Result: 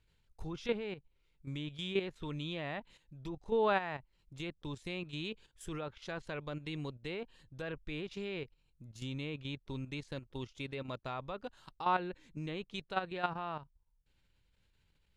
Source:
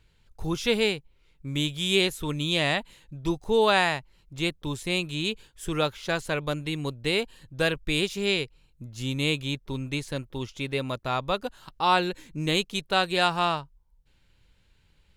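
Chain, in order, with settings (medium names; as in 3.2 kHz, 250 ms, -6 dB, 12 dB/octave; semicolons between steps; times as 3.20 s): low-pass that closes with the level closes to 2 kHz, closed at -21.5 dBFS; level held to a coarse grid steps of 11 dB; trim -6.5 dB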